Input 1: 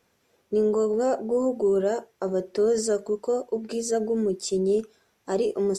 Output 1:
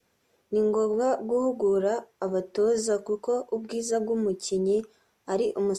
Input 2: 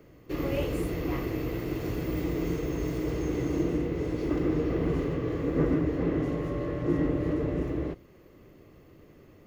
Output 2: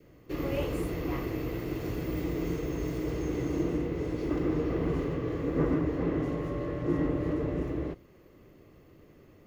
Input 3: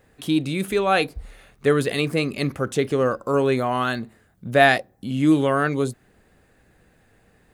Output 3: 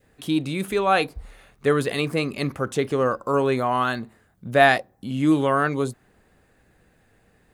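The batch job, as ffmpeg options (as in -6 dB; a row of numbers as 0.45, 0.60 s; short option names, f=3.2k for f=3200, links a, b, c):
-af "adynamicequalizer=threshold=0.0126:dfrequency=1000:dqfactor=1.6:tfrequency=1000:tqfactor=1.6:attack=5:release=100:ratio=0.375:range=2.5:mode=boostabove:tftype=bell,volume=-2dB"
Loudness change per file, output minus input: -1.5, -2.0, -1.0 LU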